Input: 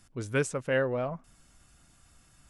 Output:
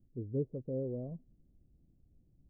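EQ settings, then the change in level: inverse Chebyshev band-stop 1.7–9.9 kHz, stop band 70 dB; -4.0 dB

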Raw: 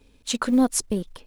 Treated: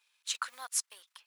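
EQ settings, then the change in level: high-pass 1.1 kHz 24 dB/octave; -6.0 dB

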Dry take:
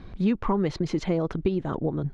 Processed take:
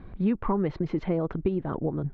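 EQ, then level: low-pass 2.1 kHz 12 dB/octave; -1.5 dB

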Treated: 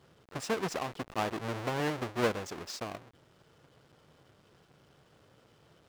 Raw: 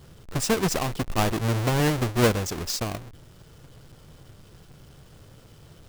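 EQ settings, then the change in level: high-pass 400 Hz 6 dB/octave; low-pass 2.5 kHz 6 dB/octave; -5.0 dB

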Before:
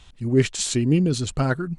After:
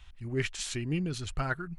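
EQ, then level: graphic EQ 125/250/500/1000/4000/8000 Hz -9/-12/-11/-4/-7/-12 dB; 0.0 dB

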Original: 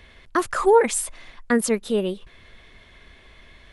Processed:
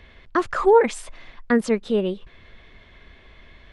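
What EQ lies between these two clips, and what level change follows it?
tape spacing loss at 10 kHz 29 dB; treble shelf 3 kHz +10.5 dB; +2.0 dB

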